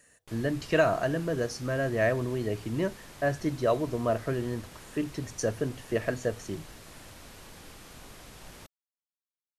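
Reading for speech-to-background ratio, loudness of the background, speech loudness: 18.0 dB, −48.5 LKFS, −30.5 LKFS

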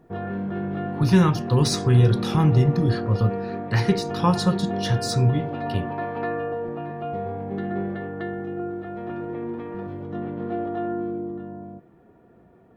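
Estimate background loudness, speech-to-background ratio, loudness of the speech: −30.0 LKFS, 8.0 dB, −22.0 LKFS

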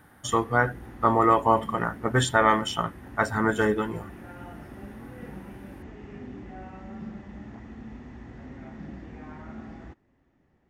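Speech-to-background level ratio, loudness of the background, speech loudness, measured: 18.5 dB, −43.0 LKFS, −24.5 LKFS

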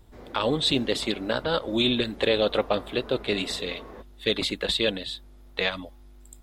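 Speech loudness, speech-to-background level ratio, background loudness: −26.5 LKFS, 18.0 dB, −44.5 LKFS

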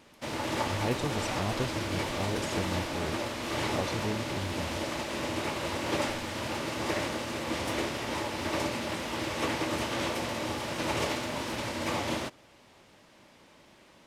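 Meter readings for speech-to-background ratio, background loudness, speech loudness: −4.0 dB, −32.5 LKFS, −36.5 LKFS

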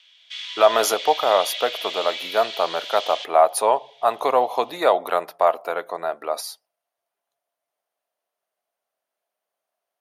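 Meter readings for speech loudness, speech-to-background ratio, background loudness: −21.5 LKFS, 8.5 dB, −30.0 LKFS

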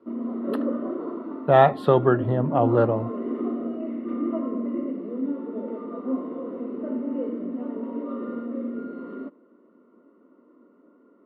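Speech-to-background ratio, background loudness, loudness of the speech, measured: 10.0 dB, −30.5 LKFS, −20.5 LKFS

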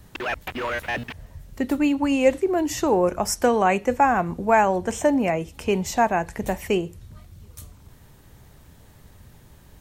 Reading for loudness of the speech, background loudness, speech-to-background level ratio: −22.0 LKFS, −29.0 LKFS, 7.0 dB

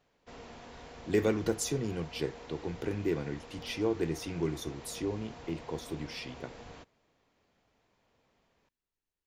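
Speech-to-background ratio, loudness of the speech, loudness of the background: 14.0 dB, −35.0 LKFS, −49.0 LKFS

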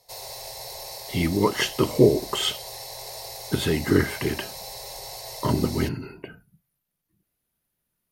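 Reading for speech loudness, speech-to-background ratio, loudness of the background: −24.0 LKFS, 12.0 dB, −36.0 LKFS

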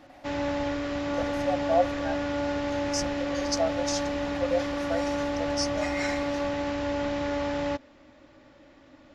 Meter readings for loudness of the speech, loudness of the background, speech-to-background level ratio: −32.0 LKFS, −30.0 LKFS, −2.0 dB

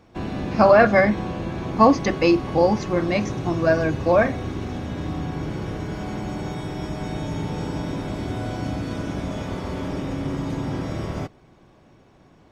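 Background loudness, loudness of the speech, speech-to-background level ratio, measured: −29.5 LKFS, −19.0 LKFS, 10.5 dB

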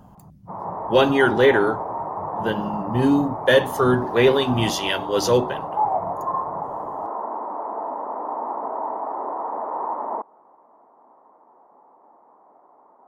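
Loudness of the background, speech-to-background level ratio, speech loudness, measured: −28.5 LKFS, 8.5 dB, −20.0 LKFS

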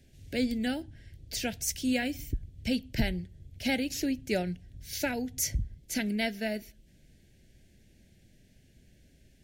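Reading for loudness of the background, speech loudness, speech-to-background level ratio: −52.5 LKFS, −32.5 LKFS, 20.0 dB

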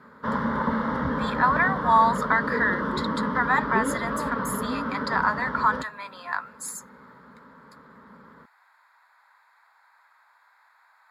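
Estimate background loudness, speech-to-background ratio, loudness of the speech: −28.5 LKFS, 3.0 dB, −25.5 LKFS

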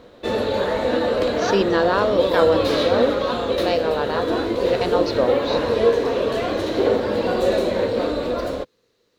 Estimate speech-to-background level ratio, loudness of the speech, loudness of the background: −1.0 dB, −22.5 LKFS, −21.5 LKFS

